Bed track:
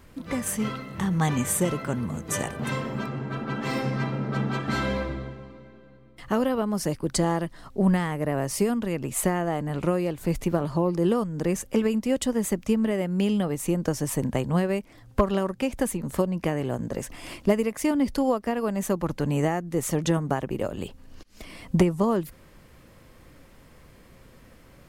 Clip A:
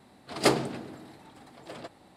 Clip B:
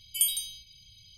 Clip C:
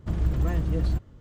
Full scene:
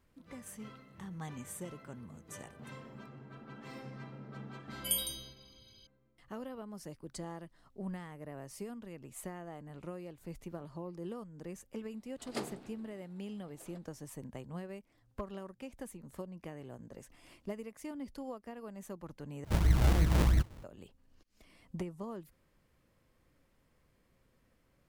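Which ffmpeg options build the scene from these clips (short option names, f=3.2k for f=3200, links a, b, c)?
-filter_complex "[0:a]volume=-19.5dB[a];[2:a]equalizer=f=7.7k:t=o:w=0.38:g=-6[b];[3:a]acrusher=samples=42:mix=1:aa=0.000001:lfo=1:lforange=42:lforate=3[c];[a]asplit=2[d][e];[d]atrim=end=19.444[f];[c]atrim=end=1.2,asetpts=PTS-STARTPTS,volume=-1.5dB[g];[e]atrim=start=20.636[h];[b]atrim=end=1.17,asetpts=PTS-STARTPTS,volume=-5.5dB,afade=t=in:d=0.004:c=hsin,afade=t=out:st=1.166:d=0.004:c=hsin,adelay=4700[i];[1:a]atrim=end=2.16,asetpts=PTS-STARTPTS,volume=-17dB,afade=t=in:d=0.004:c=hsin,afade=t=out:st=2.156:d=0.004:c=hsin,adelay=11910[j];[f][g]acrossfade=d=0.004:c1=hsin:c2=hsin[k];[k][h]acrossfade=d=0.004:c1=hsin:c2=hsin[l];[l][i][j]amix=inputs=3:normalize=0"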